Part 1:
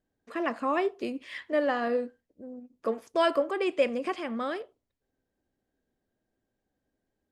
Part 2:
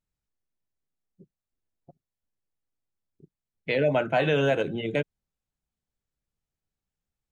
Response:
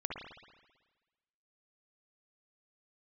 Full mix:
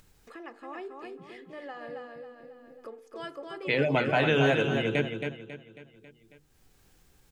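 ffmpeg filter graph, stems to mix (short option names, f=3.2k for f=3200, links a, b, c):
-filter_complex "[0:a]aecho=1:1:2.4:0.49,volume=-14.5dB,asplit=2[a][b];[b]volume=-4dB[c];[1:a]equalizer=f=590:t=o:w=0.5:g=-7,volume=1.5dB,asplit=2[d][e];[e]volume=-6dB[f];[c][f]amix=inputs=2:normalize=0,aecho=0:1:273|546|819|1092|1365:1|0.34|0.116|0.0393|0.0134[g];[a][d][g]amix=inputs=3:normalize=0,bandreject=f=50:t=h:w=6,bandreject=f=100:t=h:w=6,bandreject=f=150:t=h:w=6,bandreject=f=200:t=h:w=6,bandreject=f=250:t=h:w=6,bandreject=f=300:t=h:w=6,bandreject=f=350:t=h:w=6,bandreject=f=400:t=h:w=6,bandreject=f=450:t=h:w=6,bandreject=f=500:t=h:w=6,acompressor=mode=upward:threshold=-41dB:ratio=2.5"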